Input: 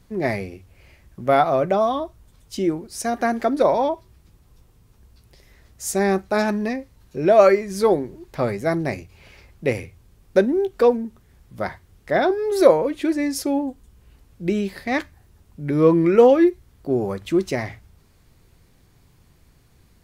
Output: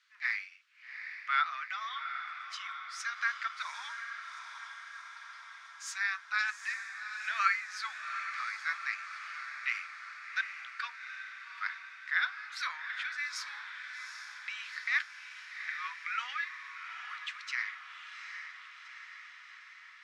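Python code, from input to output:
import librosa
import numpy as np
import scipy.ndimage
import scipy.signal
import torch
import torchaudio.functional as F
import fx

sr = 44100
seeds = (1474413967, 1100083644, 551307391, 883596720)

p1 = scipy.signal.sosfilt(scipy.signal.butter(8, 1300.0, 'highpass', fs=sr, output='sos'), x)
p2 = fx.air_absorb(p1, sr, metres=160.0)
y = p2 + fx.echo_diffused(p2, sr, ms=789, feedback_pct=65, wet_db=-8.0, dry=0)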